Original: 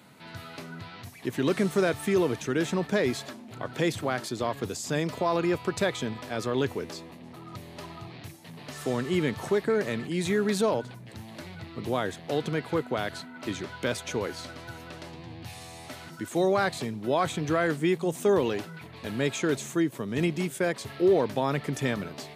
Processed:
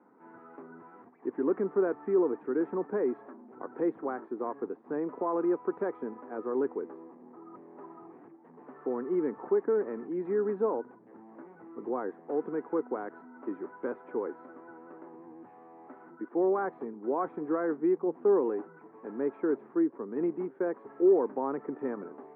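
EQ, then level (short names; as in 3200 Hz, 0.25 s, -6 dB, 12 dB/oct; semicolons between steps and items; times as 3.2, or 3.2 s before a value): HPF 290 Hz 24 dB/oct; Bessel low-pass 810 Hz, order 6; bell 620 Hz -12.5 dB 0.33 oct; +1.5 dB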